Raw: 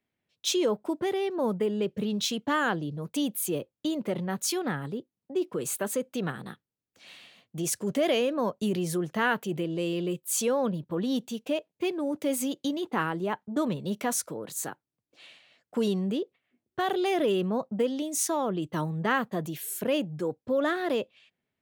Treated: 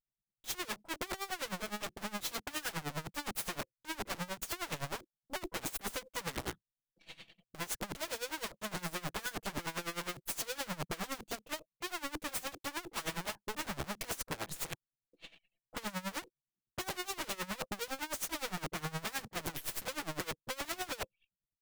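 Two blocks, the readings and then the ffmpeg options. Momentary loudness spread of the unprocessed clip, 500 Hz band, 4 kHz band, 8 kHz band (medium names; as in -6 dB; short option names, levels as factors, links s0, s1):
7 LU, -16.5 dB, -5.0 dB, -8.0 dB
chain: -af "aecho=1:1:6.1:0.97,aeval=exprs='(tanh(56.2*val(0)+0.6)-tanh(0.6))/56.2':c=same,lowshelf=f=340:g=10,anlmdn=0.00158,aeval=exprs='(mod(31.6*val(0)+1,2)-1)/31.6':c=same,acrusher=bits=7:mode=log:mix=0:aa=0.000001,aeval=exprs='val(0)*pow(10,-20*(0.5-0.5*cos(2*PI*9.7*n/s))/20)':c=same,volume=1.19"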